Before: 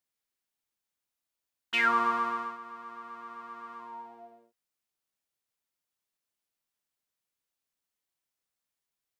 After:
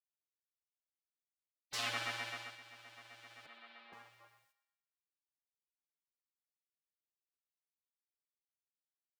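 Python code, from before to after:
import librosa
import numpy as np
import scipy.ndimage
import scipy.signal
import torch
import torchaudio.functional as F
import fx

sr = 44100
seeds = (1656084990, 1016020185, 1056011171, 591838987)

y = fx.ellip_bandpass(x, sr, low_hz=370.0, high_hz=4100.0, order=3, stop_db=40, at=(3.46, 3.93))
y = fx.spec_gate(y, sr, threshold_db=-25, keep='weak')
y = fx.echo_thinned(y, sr, ms=118, feedback_pct=48, hz=620.0, wet_db=-14.0)
y = y * 10.0 ** (6.5 / 20.0)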